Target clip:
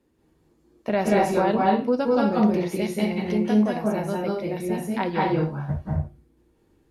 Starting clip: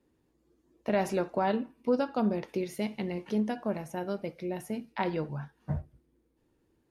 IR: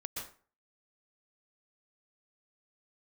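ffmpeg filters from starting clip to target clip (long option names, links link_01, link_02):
-filter_complex "[1:a]atrim=start_sample=2205,afade=type=out:start_time=0.25:duration=0.01,atrim=end_sample=11466,asetrate=29106,aresample=44100[link_01];[0:a][link_01]afir=irnorm=-1:irlink=0,volume=6dB"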